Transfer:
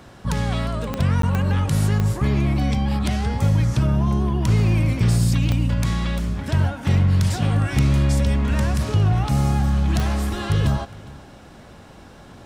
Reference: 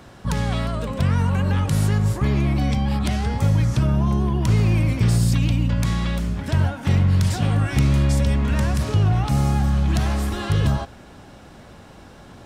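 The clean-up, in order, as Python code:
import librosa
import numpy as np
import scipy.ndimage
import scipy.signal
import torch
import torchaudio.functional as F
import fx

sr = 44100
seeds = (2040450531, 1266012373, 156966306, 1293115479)

y = fx.fix_declick_ar(x, sr, threshold=10.0)
y = fx.fix_interpolate(y, sr, at_s=(1.22,), length_ms=13.0)
y = fx.fix_echo_inverse(y, sr, delay_ms=409, level_db=-21.5)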